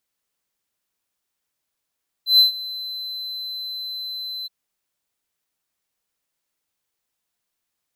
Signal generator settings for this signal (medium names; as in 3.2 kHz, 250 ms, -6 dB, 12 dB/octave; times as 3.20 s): ADSR triangle 4.05 kHz, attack 128 ms, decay 125 ms, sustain -19.5 dB, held 2.20 s, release 22 ms -6.5 dBFS